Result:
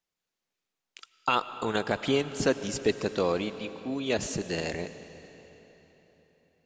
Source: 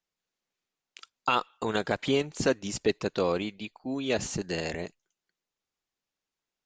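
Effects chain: algorithmic reverb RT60 4 s, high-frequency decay 0.9×, pre-delay 65 ms, DRR 12 dB

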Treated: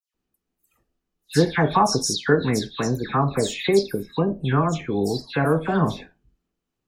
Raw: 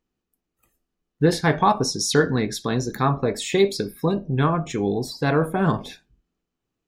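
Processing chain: phase dispersion lows, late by 145 ms, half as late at 2.9 kHz

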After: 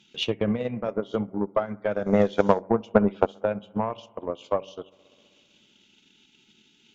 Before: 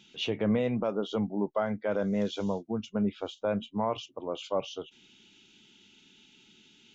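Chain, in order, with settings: de-hum 95.51 Hz, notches 6; 2.06–3.26 s: peaking EQ 890 Hz +11.5 dB 3 oct; bucket-brigade echo 64 ms, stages 1024, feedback 78%, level -17 dB; Chebyshev shaper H 4 -27 dB, 7 -32 dB, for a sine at -8.5 dBFS; transient shaper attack +9 dB, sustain -7 dB

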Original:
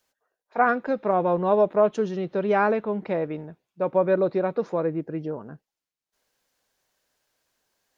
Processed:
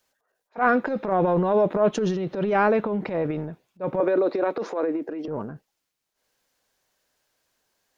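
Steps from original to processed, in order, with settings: 4.00–5.28 s: steep high-pass 250 Hz 36 dB/octave; transient shaper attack -10 dB, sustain +8 dB; trim +1.5 dB

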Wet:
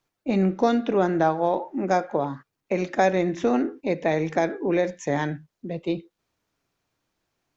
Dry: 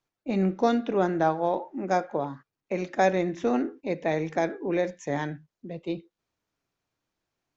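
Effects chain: compression 1.5:1, threshold -28 dBFS, peak gain reduction 4.5 dB; trim +6 dB

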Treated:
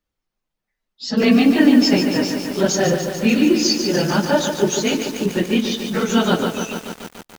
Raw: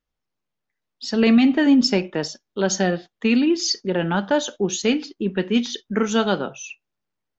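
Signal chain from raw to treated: phase randomisation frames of 50 ms; de-hum 431.5 Hz, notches 2; bit-crushed delay 145 ms, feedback 80%, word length 6-bit, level -7 dB; trim +2.5 dB

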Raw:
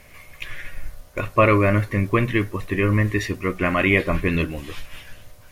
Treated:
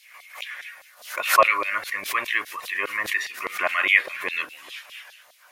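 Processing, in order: LFO high-pass saw down 4.9 Hz 670–4100 Hz; swell ahead of each attack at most 120 dB/s; trim -2.5 dB

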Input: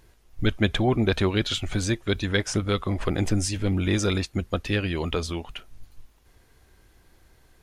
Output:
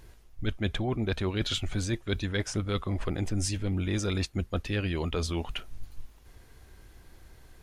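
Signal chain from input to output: bass shelf 150 Hz +4 dB; reverse; compression 5:1, threshold -29 dBFS, peak gain reduction 14 dB; reverse; trim +2 dB

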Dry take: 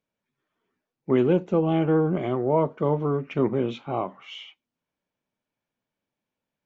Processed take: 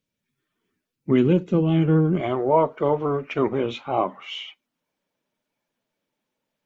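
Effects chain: coarse spectral quantiser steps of 15 dB; peaking EQ 760 Hz -11.5 dB 2 oct, from 2.20 s 170 Hz, from 3.98 s 65 Hz; trim +7 dB

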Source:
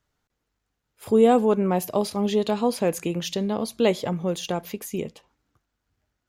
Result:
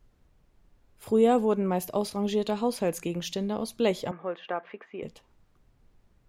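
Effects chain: added noise brown -56 dBFS; 4.11–5.03 s: cabinet simulation 400–2500 Hz, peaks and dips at 680 Hz +3 dB, 1.2 kHz +7 dB, 1.7 kHz +8 dB; trim -4.5 dB

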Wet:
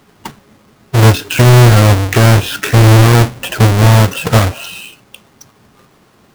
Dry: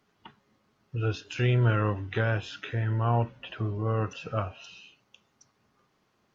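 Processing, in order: square wave that keeps the level; loudness maximiser +18.5 dB; trim -1 dB

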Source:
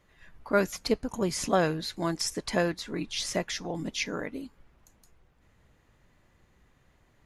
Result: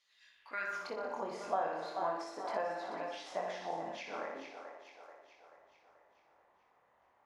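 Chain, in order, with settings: bass shelf 110 Hz +11.5 dB; flutter echo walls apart 10.3 m, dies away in 0.75 s; chorus 0.35 Hz, delay 18.5 ms, depth 7.1 ms; bass shelf 320 Hz -11.5 dB; hum notches 50/100/150 Hz; two-band feedback delay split 390 Hz, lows 98 ms, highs 434 ms, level -11 dB; compression 6:1, threshold -33 dBFS, peak gain reduction 9 dB; band-pass sweep 4.4 kHz -> 820 Hz, 0.29–0.98 s; trim +7.5 dB

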